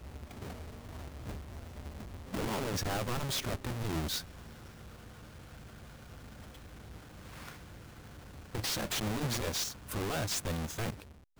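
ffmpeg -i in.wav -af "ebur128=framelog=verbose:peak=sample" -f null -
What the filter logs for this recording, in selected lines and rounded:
Integrated loudness:
  I:         -36.5 LUFS
  Threshold: -48.3 LUFS
Loudness range:
  LRA:        15.2 LU
  Threshold: -58.4 LUFS
  LRA low:   -50.4 LUFS
  LRA high:  -35.2 LUFS
Sample peak:
  Peak:      -29.6 dBFS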